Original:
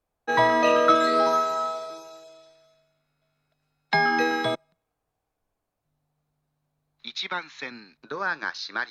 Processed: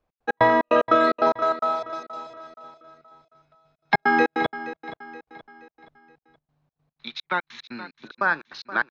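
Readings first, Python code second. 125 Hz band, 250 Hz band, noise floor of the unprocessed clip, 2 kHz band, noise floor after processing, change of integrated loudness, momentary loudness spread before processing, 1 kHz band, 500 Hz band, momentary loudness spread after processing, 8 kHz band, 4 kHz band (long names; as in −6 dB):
+0.5 dB, +2.0 dB, −81 dBFS, +1.5 dB, below −85 dBFS, +0.5 dB, 19 LU, +1.0 dB, +1.0 dB, 21 LU, below −10 dB, −4.5 dB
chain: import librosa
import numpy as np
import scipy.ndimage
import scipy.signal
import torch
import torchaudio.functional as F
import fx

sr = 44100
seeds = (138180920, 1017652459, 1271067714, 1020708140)

p1 = fx.dynamic_eq(x, sr, hz=5500.0, q=1.1, threshold_db=-43.0, ratio=4.0, max_db=-5)
p2 = fx.rider(p1, sr, range_db=4, speed_s=0.5)
p3 = p1 + F.gain(torch.from_numpy(p2), -2.0).numpy()
p4 = fx.step_gate(p3, sr, bpm=148, pattern='x.x.xx.x.xx.', floor_db=-60.0, edge_ms=4.5)
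p5 = fx.air_absorb(p4, sr, metres=160.0)
y = p5 + fx.echo_feedback(p5, sr, ms=474, feedback_pct=43, wet_db=-14.5, dry=0)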